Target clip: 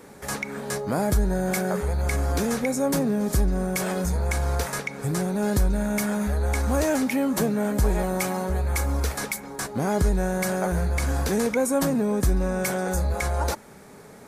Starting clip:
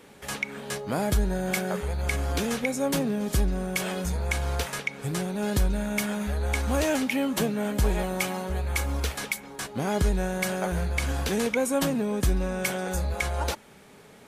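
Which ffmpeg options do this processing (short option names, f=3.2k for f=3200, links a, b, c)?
-filter_complex "[0:a]equalizer=f=3k:w=1.8:g=-11,asplit=2[a][b];[b]alimiter=level_in=1.5dB:limit=-24dB:level=0:latency=1:release=28,volume=-1.5dB,volume=-1dB[c];[a][c]amix=inputs=2:normalize=0"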